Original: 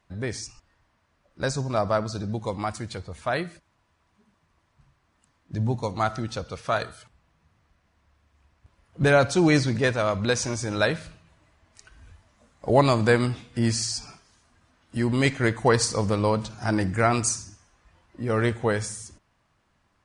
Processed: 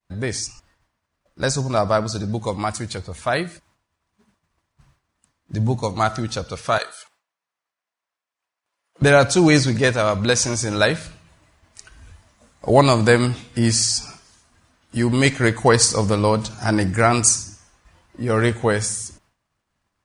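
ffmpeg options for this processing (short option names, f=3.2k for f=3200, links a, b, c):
-filter_complex "[0:a]asettb=1/sr,asplit=3[a][b][c];[a]atrim=end=6.784[d];[b]atrim=start=6.78:end=9.02,asetpts=PTS-STARTPTS,afade=t=in:d=0.004:c=qsin,afade=t=out:st=2.236:d=0.004:c=qsin,highpass=600[e];[c]atrim=start=9.016[f];[d][e]acrossfade=d=0.004:c1=hsin:c2=qsin[g];[g][f]acrossfade=d=0.004:c1=qsin:c2=hsin,agate=range=-33dB:threshold=-59dB:ratio=3:detection=peak,highshelf=f=6.1k:g=8.5,volume=5dB"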